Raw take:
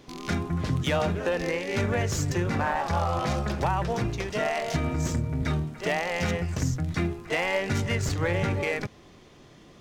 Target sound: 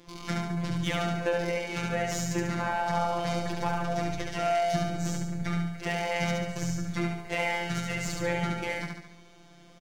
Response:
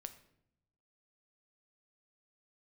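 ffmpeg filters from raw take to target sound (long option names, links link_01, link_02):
-filter_complex "[0:a]afftfilt=real='hypot(re,im)*cos(PI*b)':imag='0':win_size=1024:overlap=0.75,asplit=2[link_01][link_02];[link_02]aecho=0:1:71|142|213|284|355|426|497:0.708|0.361|0.184|0.0939|0.0479|0.0244|0.0125[link_03];[link_01][link_03]amix=inputs=2:normalize=0"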